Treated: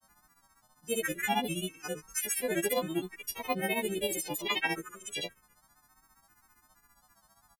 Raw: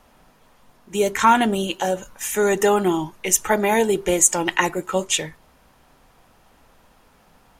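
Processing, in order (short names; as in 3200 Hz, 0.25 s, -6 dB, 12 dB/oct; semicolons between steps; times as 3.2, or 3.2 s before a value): frequency quantiser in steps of 3 st; envelope phaser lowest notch 480 Hz, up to 1400 Hz, full sweep at -12 dBFS; grains 0.1 s, grains 15/s, spray 0.1 s, pitch spread up and down by 3 st; gain -8.5 dB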